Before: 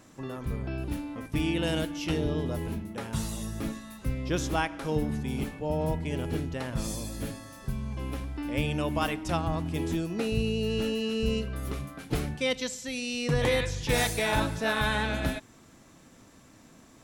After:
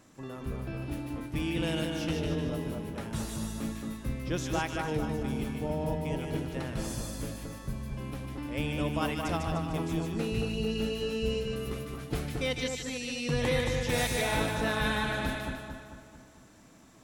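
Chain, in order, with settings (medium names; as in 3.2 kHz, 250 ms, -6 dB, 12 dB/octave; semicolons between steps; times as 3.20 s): two-band feedback delay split 1.6 kHz, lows 223 ms, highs 150 ms, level -3.5 dB; trim -4 dB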